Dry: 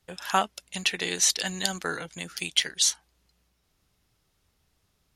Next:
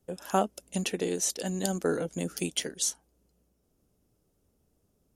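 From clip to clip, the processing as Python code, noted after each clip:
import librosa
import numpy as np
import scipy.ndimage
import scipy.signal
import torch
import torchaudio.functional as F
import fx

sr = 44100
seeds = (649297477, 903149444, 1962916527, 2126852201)

y = fx.graphic_eq(x, sr, hz=(250, 500, 1000, 2000, 4000), db=(7, 7, -5, -10, -11))
y = fx.rider(y, sr, range_db=4, speed_s=0.5)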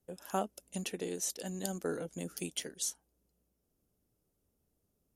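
y = fx.peak_eq(x, sr, hz=13000.0, db=6.0, octaves=0.68)
y = y * librosa.db_to_amplitude(-8.0)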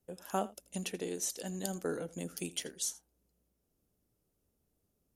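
y = x + 10.0 ** (-19.0 / 20.0) * np.pad(x, (int(82 * sr / 1000.0), 0))[:len(x)]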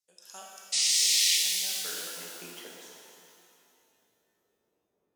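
y = fx.spec_paint(x, sr, seeds[0], shape='noise', start_s=0.72, length_s=0.65, low_hz=1800.0, high_hz=10000.0, level_db=-28.0)
y = fx.filter_sweep_bandpass(y, sr, from_hz=5400.0, to_hz=470.0, start_s=0.99, end_s=3.31, q=1.7)
y = fx.rev_shimmer(y, sr, seeds[1], rt60_s=2.5, semitones=12, shimmer_db=-8, drr_db=-2.5)
y = y * librosa.db_to_amplitude(4.0)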